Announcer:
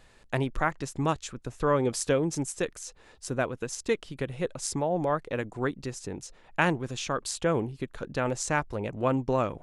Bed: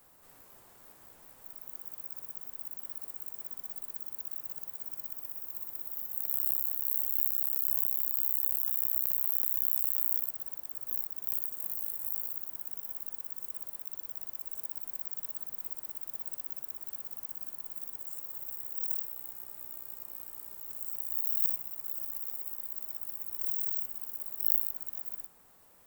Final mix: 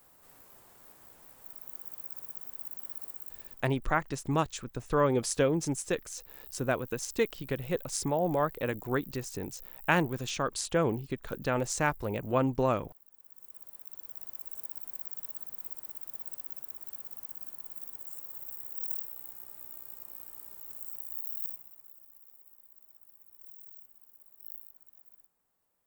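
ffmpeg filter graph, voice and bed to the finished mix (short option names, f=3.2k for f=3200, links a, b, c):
-filter_complex "[0:a]adelay=3300,volume=-1dB[a];[1:a]volume=17.5dB,afade=t=out:st=3.06:d=0.7:silence=0.105925,afade=t=in:st=13.12:d=1.22:silence=0.133352,afade=t=out:st=20.62:d=1.36:silence=0.158489[b];[a][b]amix=inputs=2:normalize=0"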